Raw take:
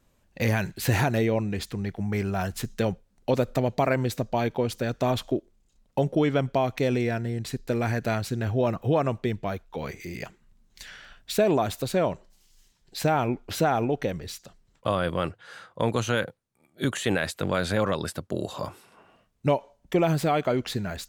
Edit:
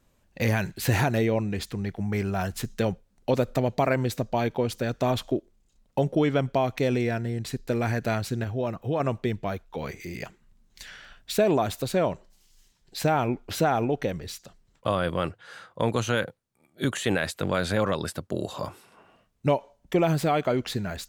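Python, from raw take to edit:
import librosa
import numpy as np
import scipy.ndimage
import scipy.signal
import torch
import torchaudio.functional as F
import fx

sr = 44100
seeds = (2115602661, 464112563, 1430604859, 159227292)

y = fx.edit(x, sr, fx.clip_gain(start_s=8.44, length_s=0.56, db=-4.5), tone=tone)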